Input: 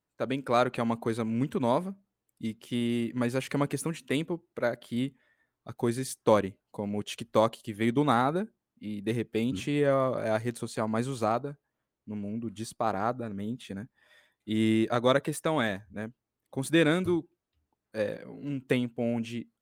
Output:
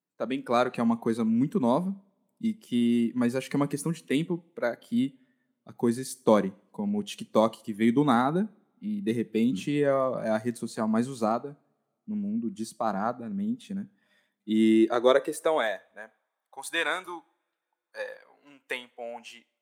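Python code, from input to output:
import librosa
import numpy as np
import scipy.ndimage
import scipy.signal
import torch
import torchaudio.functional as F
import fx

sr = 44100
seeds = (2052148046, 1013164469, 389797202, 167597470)

y = fx.rev_double_slope(x, sr, seeds[0], early_s=0.57, late_s=2.8, knee_db=-27, drr_db=16.5)
y = fx.noise_reduce_blind(y, sr, reduce_db=7)
y = fx.filter_sweep_highpass(y, sr, from_hz=190.0, to_hz=880.0, start_s=14.22, end_s=16.32, q=2.1)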